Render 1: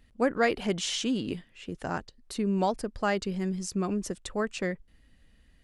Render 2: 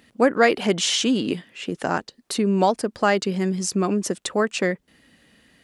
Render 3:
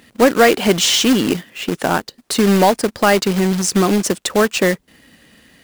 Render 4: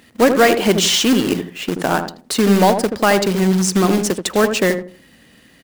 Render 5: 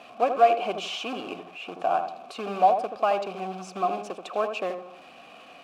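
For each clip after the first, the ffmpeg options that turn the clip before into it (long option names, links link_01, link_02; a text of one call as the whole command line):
ffmpeg -i in.wav -filter_complex "[0:a]highpass=190,asplit=2[link_01][link_02];[link_02]acompressor=threshold=-37dB:ratio=6,volume=-1.5dB[link_03];[link_01][link_03]amix=inputs=2:normalize=0,volume=7dB" out.wav
ffmpeg -i in.wav -af "acrusher=bits=2:mode=log:mix=0:aa=0.000001,acontrast=89" out.wav
ffmpeg -i in.wav -filter_complex "[0:a]asplit=2[link_01][link_02];[link_02]adelay=80,lowpass=frequency=890:poles=1,volume=-5.5dB,asplit=2[link_03][link_04];[link_04]adelay=80,lowpass=frequency=890:poles=1,volume=0.31,asplit=2[link_05][link_06];[link_06]adelay=80,lowpass=frequency=890:poles=1,volume=0.31,asplit=2[link_07][link_08];[link_08]adelay=80,lowpass=frequency=890:poles=1,volume=0.31[link_09];[link_01][link_03][link_05][link_07][link_09]amix=inputs=5:normalize=0,volume=-1dB" out.wav
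ffmpeg -i in.wav -filter_complex "[0:a]aeval=exprs='val(0)+0.5*0.0447*sgn(val(0))':channel_layout=same,asplit=3[link_01][link_02][link_03];[link_01]bandpass=frequency=730:width_type=q:width=8,volume=0dB[link_04];[link_02]bandpass=frequency=1090:width_type=q:width=8,volume=-6dB[link_05];[link_03]bandpass=frequency=2440:width_type=q:width=8,volume=-9dB[link_06];[link_04][link_05][link_06]amix=inputs=3:normalize=0" out.wav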